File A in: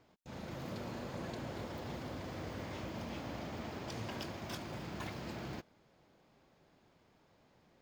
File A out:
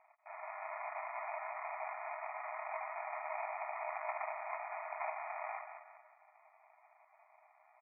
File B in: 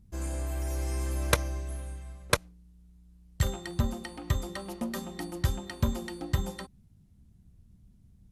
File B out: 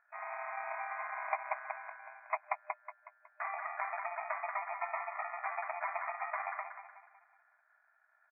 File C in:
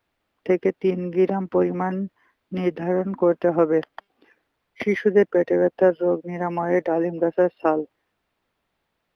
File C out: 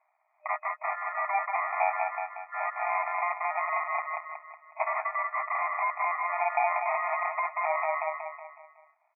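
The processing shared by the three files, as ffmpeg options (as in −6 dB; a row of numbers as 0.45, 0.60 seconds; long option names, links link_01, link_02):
-filter_complex "[0:a]aecho=1:1:6.8:0.38,asplit=2[link_01][link_02];[link_02]adelay=184,lowpass=frequency=1600:poles=1,volume=-6.5dB,asplit=2[link_03][link_04];[link_04]adelay=184,lowpass=frequency=1600:poles=1,volume=0.49,asplit=2[link_05][link_06];[link_06]adelay=184,lowpass=frequency=1600:poles=1,volume=0.49,asplit=2[link_07][link_08];[link_08]adelay=184,lowpass=frequency=1600:poles=1,volume=0.49,asplit=2[link_09][link_10];[link_10]adelay=184,lowpass=frequency=1600:poles=1,volume=0.49,asplit=2[link_11][link_12];[link_12]adelay=184,lowpass=frequency=1600:poles=1,volume=0.49[link_13];[link_01][link_03][link_05][link_07][link_09][link_11][link_13]amix=inputs=7:normalize=0,alimiter=limit=-14dB:level=0:latency=1:release=250,crystalizer=i=6:c=0,aresample=8000,volume=23.5dB,asoftclip=hard,volume=-23.5dB,aresample=44100,acrusher=samples=28:mix=1:aa=0.000001,afftfilt=real='re*between(b*sr/4096,610,2500)':imag='im*between(b*sr/4096,610,2500)':win_size=4096:overlap=0.75,volume=4.5dB"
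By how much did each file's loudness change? +1.5, −6.5, −8.0 LU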